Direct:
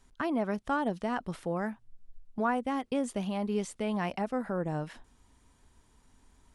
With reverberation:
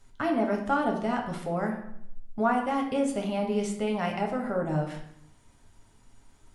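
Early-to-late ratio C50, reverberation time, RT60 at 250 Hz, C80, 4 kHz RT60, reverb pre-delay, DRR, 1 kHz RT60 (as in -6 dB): 6.5 dB, 0.75 s, 0.85 s, 10.0 dB, 0.55 s, 7 ms, 0.5 dB, 0.70 s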